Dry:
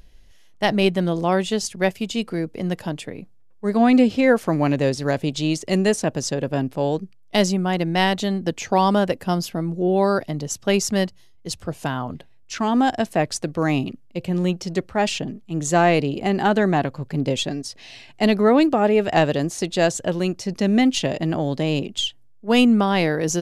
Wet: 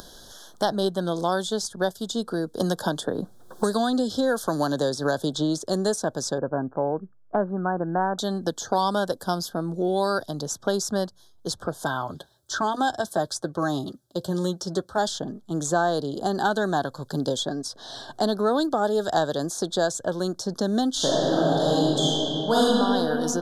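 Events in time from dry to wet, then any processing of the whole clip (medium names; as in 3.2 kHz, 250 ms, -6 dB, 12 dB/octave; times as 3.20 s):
2.60–5.60 s: three bands compressed up and down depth 100%
6.38–8.19 s: steep low-pass 1.6 kHz 48 dB/octave
11.85–14.98 s: comb of notches 240 Hz
20.92–22.64 s: reverb throw, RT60 2.2 s, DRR -9.5 dB
whole clip: elliptic band-stop 1.6–3.4 kHz, stop band 40 dB; bass shelf 390 Hz -11.5 dB; three bands compressed up and down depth 70%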